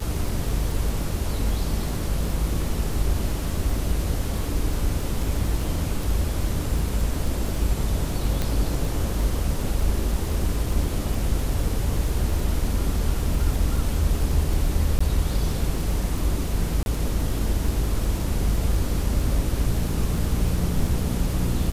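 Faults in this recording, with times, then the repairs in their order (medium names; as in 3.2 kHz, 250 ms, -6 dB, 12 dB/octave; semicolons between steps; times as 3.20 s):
crackle 21 per s -27 dBFS
8.42 s: pop
14.99–15.01 s: dropout 15 ms
16.83–16.86 s: dropout 31 ms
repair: de-click; interpolate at 14.99 s, 15 ms; interpolate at 16.83 s, 31 ms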